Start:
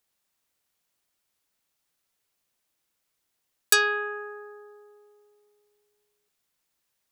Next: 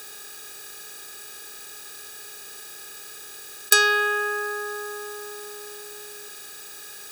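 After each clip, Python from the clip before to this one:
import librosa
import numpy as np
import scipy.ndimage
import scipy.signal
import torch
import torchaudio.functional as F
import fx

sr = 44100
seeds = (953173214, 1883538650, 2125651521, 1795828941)

y = fx.bin_compress(x, sr, power=0.4)
y = y * librosa.db_to_amplitude(2.0)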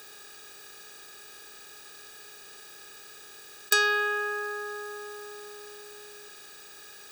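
y = fx.peak_eq(x, sr, hz=13000.0, db=-9.5, octaves=1.1)
y = y * librosa.db_to_amplitude(-4.5)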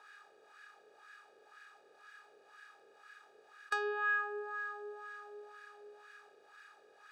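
y = fx.wah_lfo(x, sr, hz=2.0, low_hz=490.0, high_hz=1600.0, q=2.8)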